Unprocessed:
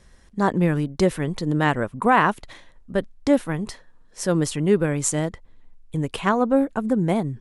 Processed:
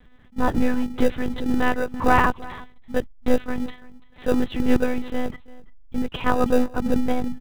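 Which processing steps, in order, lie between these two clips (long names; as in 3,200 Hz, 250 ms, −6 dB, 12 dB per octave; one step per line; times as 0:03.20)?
one-pitch LPC vocoder at 8 kHz 250 Hz
single-tap delay 337 ms −20.5 dB
in parallel at −11.5 dB: decimation without filtering 41×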